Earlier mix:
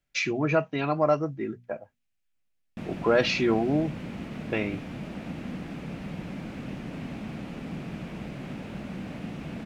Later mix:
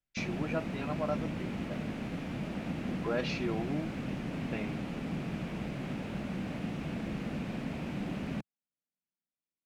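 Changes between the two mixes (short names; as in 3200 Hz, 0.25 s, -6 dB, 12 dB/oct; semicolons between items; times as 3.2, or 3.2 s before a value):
speech -11.5 dB; background: entry -2.60 s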